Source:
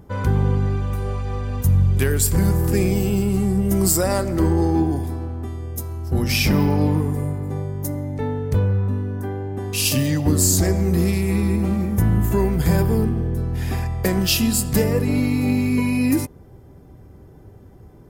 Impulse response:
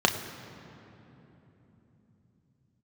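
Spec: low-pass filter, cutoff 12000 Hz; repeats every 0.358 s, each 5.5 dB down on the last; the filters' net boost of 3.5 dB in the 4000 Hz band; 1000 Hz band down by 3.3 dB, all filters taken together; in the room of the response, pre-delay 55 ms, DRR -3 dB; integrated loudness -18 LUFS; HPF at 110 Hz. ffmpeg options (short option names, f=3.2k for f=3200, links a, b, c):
-filter_complex "[0:a]highpass=110,lowpass=12k,equalizer=f=1k:t=o:g=-4.5,equalizer=f=4k:t=o:g=5,aecho=1:1:358|716|1074|1432|1790|2148|2506:0.531|0.281|0.149|0.079|0.0419|0.0222|0.0118,asplit=2[a][b];[1:a]atrim=start_sample=2205,adelay=55[c];[b][c]afir=irnorm=-1:irlink=0,volume=-12dB[d];[a][d]amix=inputs=2:normalize=0,volume=-3.5dB"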